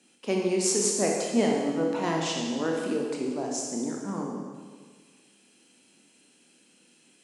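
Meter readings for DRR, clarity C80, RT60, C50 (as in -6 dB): -1.0 dB, 3.0 dB, 1.6 s, 1.0 dB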